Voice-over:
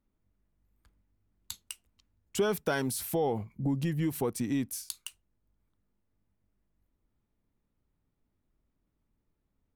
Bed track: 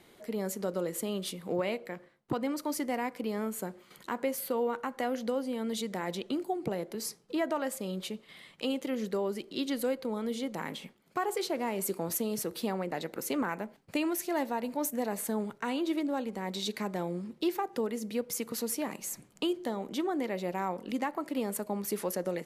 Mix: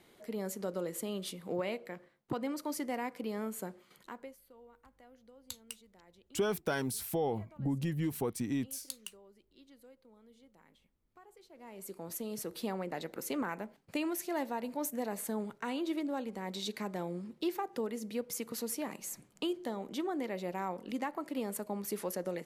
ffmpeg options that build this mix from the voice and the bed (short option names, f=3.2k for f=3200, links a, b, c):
-filter_complex "[0:a]adelay=4000,volume=-3.5dB[a];[1:a]volume=19dB,afade=t=out:st=3.72:d=0.66:silence=0.0707946,afade=t=in:st=11.5:d=1.16:silence=0.0707946[b];[a][b]amix=inputs=2:normalize=0"